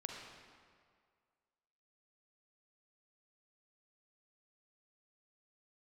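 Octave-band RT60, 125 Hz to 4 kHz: 1.8 s, 1.8 s, 2.0 s, 2.0 s, 1.7 s, 1.4 s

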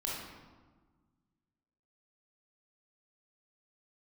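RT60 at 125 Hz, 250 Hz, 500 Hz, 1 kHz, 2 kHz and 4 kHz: 2.2 s, 2.0 s, 1.4 s, 1.4 s, 1.0 s, 0.85 s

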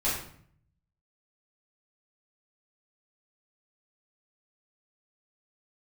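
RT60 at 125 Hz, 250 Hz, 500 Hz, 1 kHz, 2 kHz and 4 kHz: 1.1 s, 0.80 s, 0.60 s, 0.55 s, 0.55 s, 0.45 s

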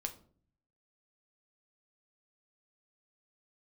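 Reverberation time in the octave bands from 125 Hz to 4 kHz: 0.90 s, 0.75 s, 0.55 s, 0.40 s, 0.35 s, 0.30 s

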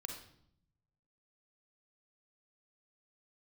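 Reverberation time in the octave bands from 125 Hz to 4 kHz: 1.5 s, 1.1 s, 0.70 s, 0.65 s, 0.55 s, 0.55 s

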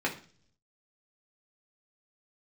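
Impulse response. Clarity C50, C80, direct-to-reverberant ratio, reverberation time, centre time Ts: 11.5 dB, 16.5 dB, -3.0 dB, 0.45 s, 15 ms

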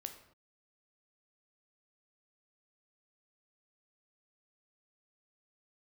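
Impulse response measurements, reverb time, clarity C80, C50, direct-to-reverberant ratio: no single decay rate, 12.0 dB, 9.5 dB, 6.0 dB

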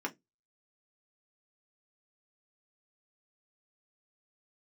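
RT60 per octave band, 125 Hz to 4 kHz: 0.25 s, 0.25 s, 0.20 s, 0.10 s, 0.15 s, 0.15 s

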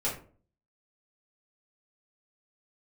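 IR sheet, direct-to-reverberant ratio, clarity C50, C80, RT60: -7.0 dB, 7.5 dB, 12.5 dB, 0.45 s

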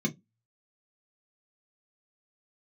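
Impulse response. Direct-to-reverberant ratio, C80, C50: 0.0 dB, 33.5 dB, 22.5 dB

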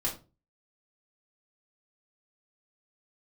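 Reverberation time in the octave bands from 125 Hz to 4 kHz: 0.50 s, 0.40 s, 0.35 s, 0.30 s, 0.25 s, 0.25 s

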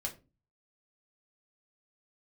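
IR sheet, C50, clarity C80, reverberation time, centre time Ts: 14.5 dB, 19.5 dB, 0.30 s, 12 ms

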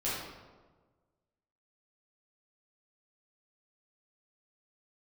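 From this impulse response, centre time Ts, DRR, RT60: 82 ms, -10.0 dB, 1.4 s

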